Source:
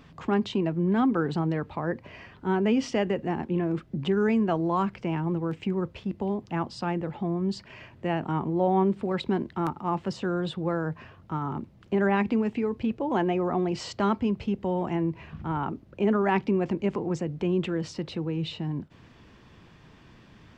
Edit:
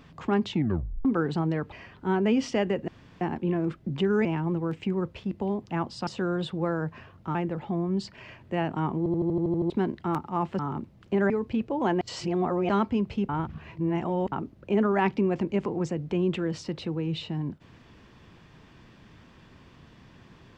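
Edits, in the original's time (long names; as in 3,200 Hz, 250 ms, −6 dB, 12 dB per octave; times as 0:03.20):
0:00.49: tape stop 0.56 s
0:01.72–0:02.12: remove
0:03.28: splice in room tone 0.33 s
0:04.32–0:05.05: remove
0:08.50: stutter in place 0.08 s, 9 plays
0:10.11–0:11.39: move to 0:06.87
0:12.10–0:12.60: remove
0:13.31–0:13.99: reverse
0:14.59–0:15.62: reverse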